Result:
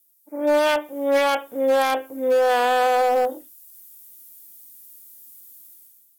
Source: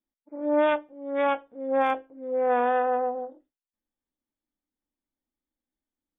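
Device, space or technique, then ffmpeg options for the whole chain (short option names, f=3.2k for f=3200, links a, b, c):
FM broadcast chain: -filter_complex "[0:a]highpass=f=67:p=1,dynaudnorm=f=110:g=9:m=15.5dB,acrossover=split=380|3000[a][b][c];[a]acompressor=threshold=-35dB:ratio=4[d];[b]acompressor=threshold=-13dB:ratio=4[e];[c]acompressor=threshold=-43dB:ratio=4[f];[d][e][f]amix=inputs=3:normalize=0,aemphasis=mode=production:type=75fm,alimiter=limit=-15dB:level=0:latency=1:release=20,asoftclip=type=hard:threshold=-18dB,lowpass=f=15k:w=0.5412,lowpass=f=15k:w=1.3066,aemphasis=mode=production:type=75fm,volume=4.5dB"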